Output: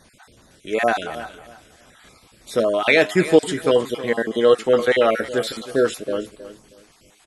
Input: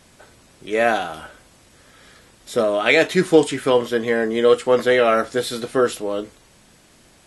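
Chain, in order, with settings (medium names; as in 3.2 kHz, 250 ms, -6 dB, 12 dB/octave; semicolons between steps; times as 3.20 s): random holes in the spectrogram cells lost 27%; feedback delay 317 ms, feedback 24%, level -14.5 dB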